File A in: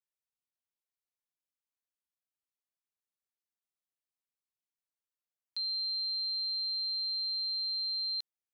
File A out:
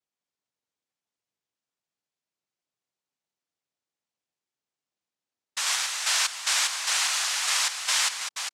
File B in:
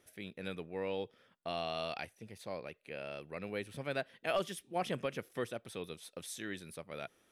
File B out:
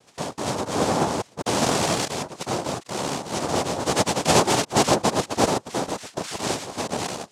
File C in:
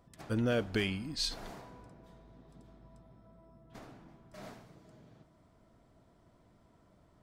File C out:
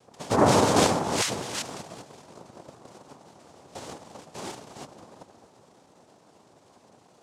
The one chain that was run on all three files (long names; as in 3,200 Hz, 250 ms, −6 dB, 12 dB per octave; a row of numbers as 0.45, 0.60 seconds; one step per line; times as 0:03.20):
delay that plays each chunk backwards 202 ms, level −3.5 dB
parametric band 5,100 Hz −8.5 dB 0.72 octaves
in parallel at −6 dB: bit-depth reduction 8 bits, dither none
on the sum: cochlear-implant simulation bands 2
pitch vibrato 0.73 Hz 7.4 cents
loudness normalisation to −24 LKFS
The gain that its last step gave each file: +7.5, +12.0, +7.0 decibels